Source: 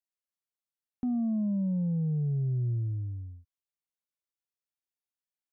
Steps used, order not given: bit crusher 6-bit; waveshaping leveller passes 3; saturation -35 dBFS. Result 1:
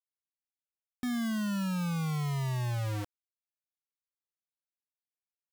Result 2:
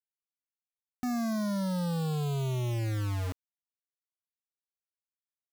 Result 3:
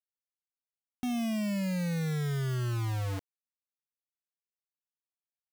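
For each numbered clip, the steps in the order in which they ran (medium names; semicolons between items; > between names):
saturation > bit crusher > waveshaping leveller; waveshaping leveller > saturation > bit crusher; saturation > waveshaping leveller > bit crusher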